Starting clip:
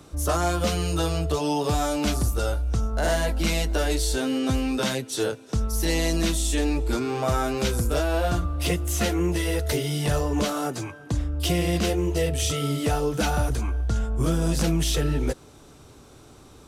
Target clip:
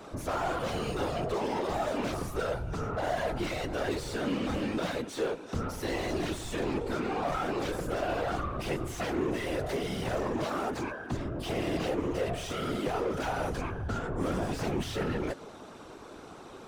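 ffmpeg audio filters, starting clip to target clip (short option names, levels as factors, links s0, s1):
-filter_complex "[0:a]asplit=2[s0][s1];[s1]highpass=f=720:p=1,volume=22.4,asoftclip=type=tanh:threshold=0.224[s2];[s0][s2]amix=inputs=2:normalize=0,lowpass=f=1100:p=1,volume=0.501,afftfilt=real='hypot(re,im)*cos(2*PI*random(0))':imag='hypot(re,im)*sin(2*PI*random(1))':win_size=512:overlap=0.75,volume=0.631"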